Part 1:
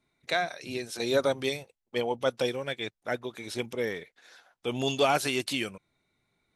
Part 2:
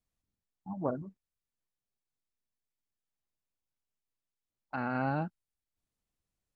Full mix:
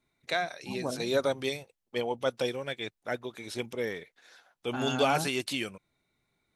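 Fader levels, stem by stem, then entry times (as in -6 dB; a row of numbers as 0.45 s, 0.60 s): -2.0 dB, -1.5 dB; 0.00 s, 0.00 s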